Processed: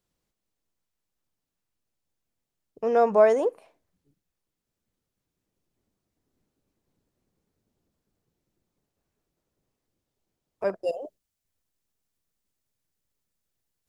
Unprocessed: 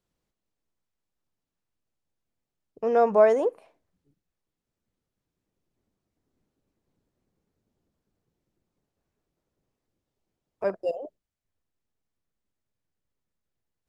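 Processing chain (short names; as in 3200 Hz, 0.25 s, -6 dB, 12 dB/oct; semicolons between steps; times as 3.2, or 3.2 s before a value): high shelf 3800 Hz +4.5 dB, from 10.84 s +10.5 dB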